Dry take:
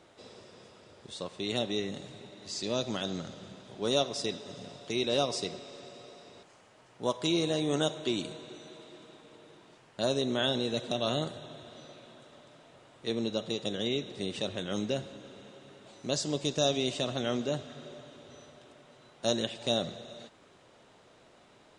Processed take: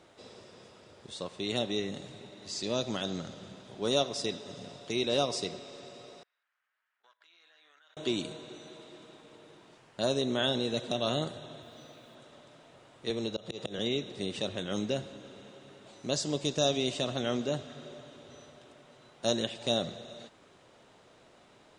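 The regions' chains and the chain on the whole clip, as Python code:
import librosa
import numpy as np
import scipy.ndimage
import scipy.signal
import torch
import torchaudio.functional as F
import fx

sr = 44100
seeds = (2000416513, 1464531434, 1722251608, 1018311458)

y = fx.chain(x, sr, fx.halfwave_gain(db=-3.0),
    fx.ladder_bandpass(hz=1800.0, resonance_pct=55),
    fx.level_steps(step_db=21), at=(6.23, 7.97))
y = fx.chain(y, sr, fx.notch_comb(f0_hz=190.0),
    fx.quant_dither(seeds[0], bits=12, dither='none'), at=(11.62, 12.15))
y = fx.chain(y, sr, fx.auto_swell(attack_ms=148.0),
    fx.peak_eq(hz=250.0, db=-6.5, octaves=0.38),
    fx.band_squash(depth_pct=70), at=(13.1, 13.79))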